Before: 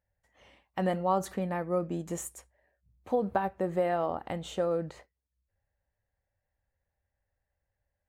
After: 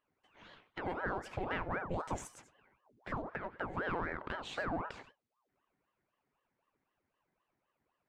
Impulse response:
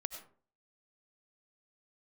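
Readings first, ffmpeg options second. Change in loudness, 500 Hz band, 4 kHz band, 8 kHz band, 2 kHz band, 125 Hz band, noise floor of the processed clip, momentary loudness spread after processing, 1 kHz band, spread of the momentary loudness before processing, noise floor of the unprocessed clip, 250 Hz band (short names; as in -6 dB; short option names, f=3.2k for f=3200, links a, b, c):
-8.0 dB, -11.5 dB, -2.5 dB, -10.5 dB, +3.5 dB, -7.5 dB, under -85 dBFS, 15 LU, -6.5 dB, 9 LU, -85 dBFS, -9.5 dB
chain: -filter_complex "[0:a]lowshelf=f=220:g=-9,acompressor=threshold=-33dB:ratio=6,alimiter=level_in=7.5dB:limit=-24dB:level=0:latency=1:release=410,volume=-7.5dB,aeval=exprs='0.0282*(cos(1*acos(clip(val(0)/0.0282,-1,1)))-cos(1*PI/2))+0.000562*(cos(6*acos(clip(val(0)/0.0282,-1,1)))-cos(6*PI/2))':c=same,adynamicsmooth=sensitivity=3.5:basefreq=4.4k[a];[1:a]atrim=start_sample=2205,afade=t=out:st=0.14:d=0.01,atrim=end_sample=6615[b];[a][b]afir=irnorm=-1:irlink=0,aeval=exprs='val(0)*sin(2*PI*660*n/s+660*0.75/3.9*sin(2*PI*3.9*n/s))':c=same,volume=9dB"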